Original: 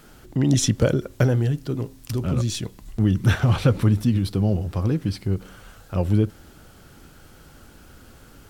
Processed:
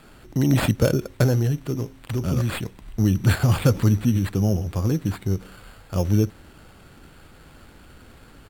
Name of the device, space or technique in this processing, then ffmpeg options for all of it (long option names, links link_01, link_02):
crushed at another speed: -af "asetrate=55125,aresample=44100,acrusher=samples=6:mix=1:aa=0.000001,asetrate=35280,aresample=44100"